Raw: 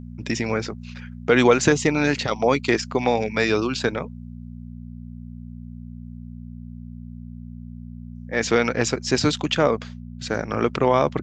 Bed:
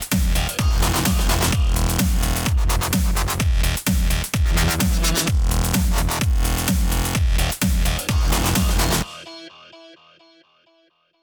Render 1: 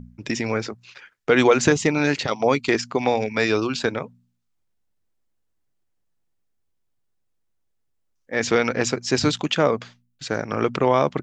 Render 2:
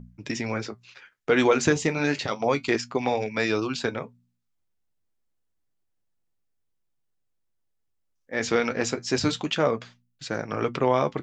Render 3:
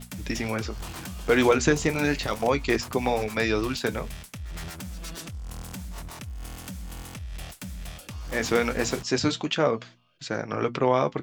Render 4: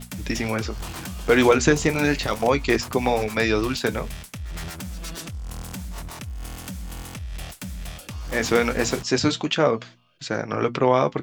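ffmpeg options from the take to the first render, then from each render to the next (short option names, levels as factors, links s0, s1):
-af "bandreject=f=60:t=h:w=4,bandreject=f=120:t=h:w=4,bandreject=f=180:t=h:w=4,bandreject=f=240:t=h:w=4"
-af "flanger=delay=5.7:depth=7:regen=-59:speed=0.29:shape=triangular"
-filter_complex "[1:a]volume=0.119[s0];[0:a][s0]amix=inputs=2:normalize=0"
-af "volume=1.5"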